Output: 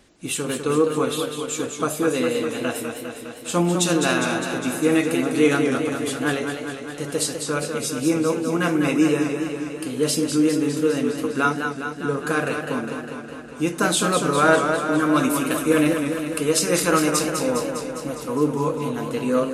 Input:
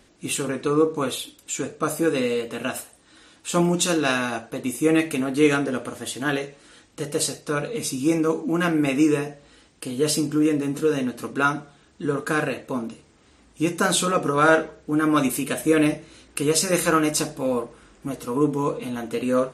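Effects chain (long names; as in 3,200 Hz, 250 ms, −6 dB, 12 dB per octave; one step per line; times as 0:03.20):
feedback echo with a swinging delay time 203 ms, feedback 70%, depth 100 cents, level −6.5 dB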